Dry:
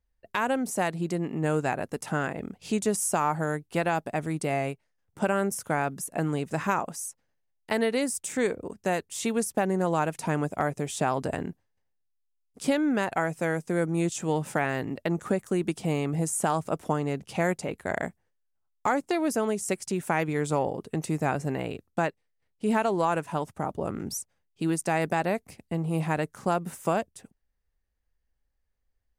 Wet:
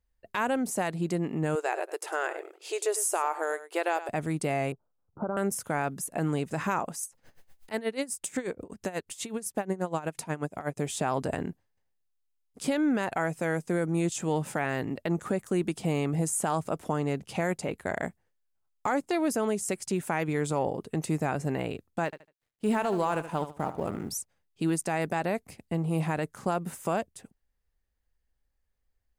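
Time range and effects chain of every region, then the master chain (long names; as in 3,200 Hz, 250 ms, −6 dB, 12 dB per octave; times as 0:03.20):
0:01.55–0:04.09: linear-phase brick-wall high-pass 320 Hz + single-tap delay 101 ms −14.5 dB
0:04.72–0:05.37: Butterworth low-pass 1,400 Hz 72 dB per octave + downward compressor 4 to 1, threshold −27 dBFS
0:07.03–0:10.77: upward compression, threshold −27 dBFS + tremolo with a sine in dB 8.2 Hz, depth 19 dB
0:22.05–0:24.10: mu-law and A-law mismatch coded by A + repeating echo 75 ms, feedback 24%, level −13 dB
whole clip: notch filter 5,700 Hz, Q 25; brickwall limiter −17.5 dBFS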